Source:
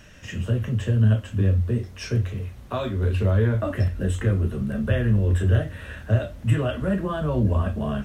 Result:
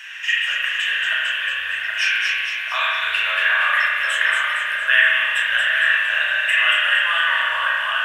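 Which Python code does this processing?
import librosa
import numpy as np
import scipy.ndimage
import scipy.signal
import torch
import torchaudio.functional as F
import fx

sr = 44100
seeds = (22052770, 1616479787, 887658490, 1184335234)

y = scipy.signal.sosfilt(scipy.signal.cheby2(4, 50, 380.0, 'highpass', fs=sr, output='sos'), x)
y = fx.band_shelf(y, sr, hz=2300.0, db=11.0, octaves=1.3)
y = fx.echo_split(y, sr, split_hz=2100.0, low_ms=776, high_ms=230, feedback_pct=52, wet_db=-4)
y = fx.rev_spring(y, sr, rt60_s=1.7, pass_ms=(34,), chirp_ms=50, drr_db=-4.0)
y = y * 10.0 ** (6.5 / 20.0)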